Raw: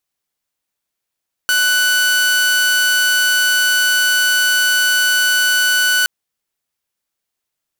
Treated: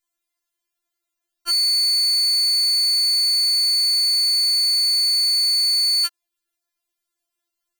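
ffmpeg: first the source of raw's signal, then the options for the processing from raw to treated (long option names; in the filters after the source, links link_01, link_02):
-f lavfi -i "aevalsrc='0.335*(2*mod(1490*t,1)-1)':duration=4.57:sample_rate=44100"
-af "afftfilt=real='re*4*eq(mod(b,16),0)':imag='im*4*eq(mod(b,16),0)':win_size=2048:overlap=0.75"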